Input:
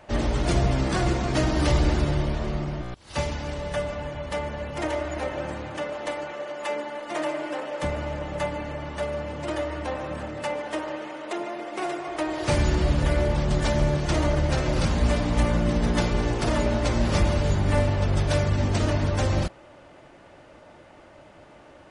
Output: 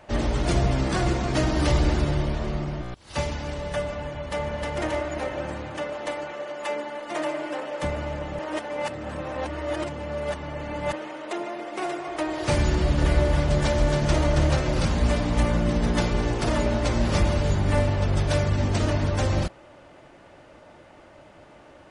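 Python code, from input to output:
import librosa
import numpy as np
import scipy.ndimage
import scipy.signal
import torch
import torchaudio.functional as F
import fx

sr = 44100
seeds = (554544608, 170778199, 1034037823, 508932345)

y = fx.echo_throw(x, sr, start_s=4.08, length_s=0.61, ms=310, feedback_pct=35, wet_db=-1.5)
y = fx.echo_single(y, sr, ms=274, db=-4.5, at=(12.7, 14.57))
y = fx.edit(y, sr, fx.reverse_span(start_s=8.39, length_s=2.54), tone=tone)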